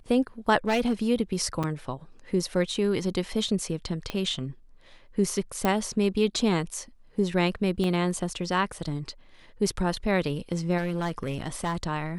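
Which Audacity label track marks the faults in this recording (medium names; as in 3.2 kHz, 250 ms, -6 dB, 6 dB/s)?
0.670000	0.930000	clipped -19 dBFS
1.630000	1.640000	dropout 6.2 ms
4.100000	4.100000	pop -16 dBFS
5.650000	5.650000	pop -11 dBFS
7.840000	7.840000	dropout 2.5 ms
10.770000	11.840000	clipped -23.5 dBFS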